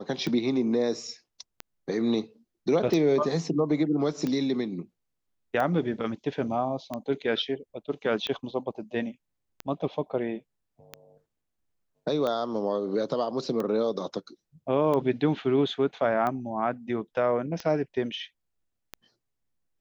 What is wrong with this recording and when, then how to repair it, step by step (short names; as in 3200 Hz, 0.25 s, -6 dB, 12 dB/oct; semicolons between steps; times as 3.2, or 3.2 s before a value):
tick 45 rpm -18 dBFS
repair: de-click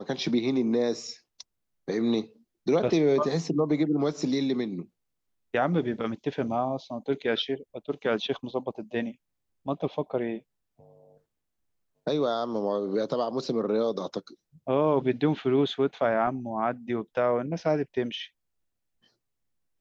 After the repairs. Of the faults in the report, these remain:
none